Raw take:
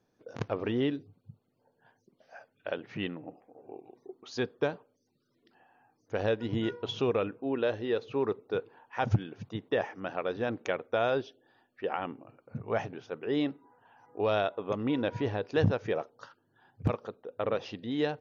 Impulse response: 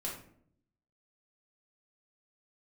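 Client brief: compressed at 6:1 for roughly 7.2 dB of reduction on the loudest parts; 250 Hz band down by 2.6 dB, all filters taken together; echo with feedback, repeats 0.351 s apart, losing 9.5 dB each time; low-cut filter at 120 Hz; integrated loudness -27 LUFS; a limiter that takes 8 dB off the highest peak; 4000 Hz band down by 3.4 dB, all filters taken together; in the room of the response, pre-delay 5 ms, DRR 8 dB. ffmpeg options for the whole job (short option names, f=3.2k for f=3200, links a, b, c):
-filter_complex "[0:a]highpass=120,equalizer=f=250:t=o:g=-3,equalizer=f=4k:t=o:g=-4.5,acompressor=threshold=-31dB:ratio=6,alimiter=level_in=2dB:limit=-24dB:level=0:latency=1,volume=-2dB,aecho=1:1:351|702|1053|1404:0.335|0.111|0.0365|0.012,asplit=2[a][b];[1:a]atrim=start_sample=2205,adelay=5[c];[b][c]afir=irnorm=-1:irlink=0,volume=-9.5dB[d];[a][d]amix=inputs=2:normalize=0,volume=12dB"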